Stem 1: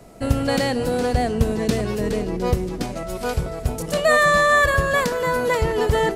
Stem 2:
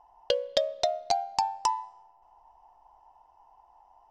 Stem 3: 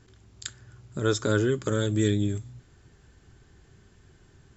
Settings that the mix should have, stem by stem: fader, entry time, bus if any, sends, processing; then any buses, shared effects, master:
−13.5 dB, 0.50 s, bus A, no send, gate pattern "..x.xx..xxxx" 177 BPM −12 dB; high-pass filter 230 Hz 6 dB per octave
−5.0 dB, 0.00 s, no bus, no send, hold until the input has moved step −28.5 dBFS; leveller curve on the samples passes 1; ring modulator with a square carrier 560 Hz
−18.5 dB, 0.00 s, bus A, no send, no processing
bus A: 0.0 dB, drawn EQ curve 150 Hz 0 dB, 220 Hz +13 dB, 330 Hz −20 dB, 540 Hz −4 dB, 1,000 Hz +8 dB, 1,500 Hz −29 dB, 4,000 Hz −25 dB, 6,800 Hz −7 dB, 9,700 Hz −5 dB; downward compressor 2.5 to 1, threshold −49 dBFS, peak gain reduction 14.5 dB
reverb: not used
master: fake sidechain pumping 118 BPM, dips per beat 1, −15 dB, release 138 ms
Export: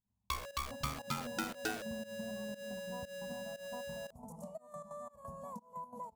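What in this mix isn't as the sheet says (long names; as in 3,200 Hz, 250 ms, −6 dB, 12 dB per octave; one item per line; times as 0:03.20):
stem 2 −5.0 dB → −14.0 dB
stem 3 −18.5 dB → −29.5 dB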